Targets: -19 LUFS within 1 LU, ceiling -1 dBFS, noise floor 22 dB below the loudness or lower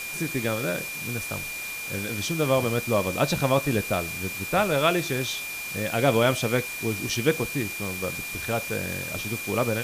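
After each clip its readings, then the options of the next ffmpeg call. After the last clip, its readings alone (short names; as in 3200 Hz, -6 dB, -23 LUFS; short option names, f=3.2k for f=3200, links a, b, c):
steady tone 2400 Hz; tone level -33 dBFS; noise floor -34 dBFS; noise floor target -48 dBFS; loudness -26.0 LUFS; peak -8.0 dBFS; loudness target -19.0 LUFS
-> -af "bandreject=f=2.4k:w=30"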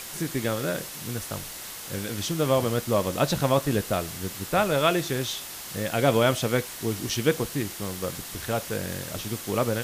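steady tone none; noise floor -39 dBFS; noise floor target -49 dBFS
-> -af "afftdn=nr=10:nf=-39"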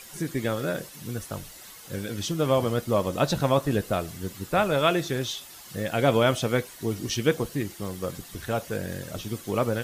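noise floor -46 dBFS; noise floor target -50 dBFS
-> -af "afftdn=nr=6:nf=-46"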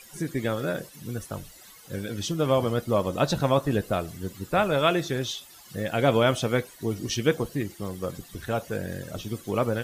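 noise floor -50 dBFS; loudness -27.5 LUFS; peak -8.5 dBFS; loudness target -19.0 LUFS
-> -af "volume=8.5dB,alimiter=limit=-1dB:level=0:latency=1"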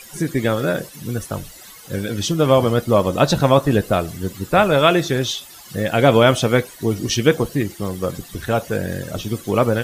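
loudness -19.0 LUFS; peak -1.0 dBFS; noise floor -41 dBFS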